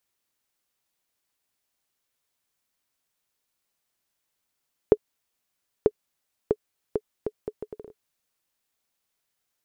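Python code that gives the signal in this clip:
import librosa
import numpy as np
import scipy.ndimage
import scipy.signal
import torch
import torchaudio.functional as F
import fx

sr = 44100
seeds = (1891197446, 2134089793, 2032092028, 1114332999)

y = fx.bouncing_ball(sr, first_gap_s=0.94, ratio=0.69, hz=426.0, decay_ms=52.0, level_db=-3.5)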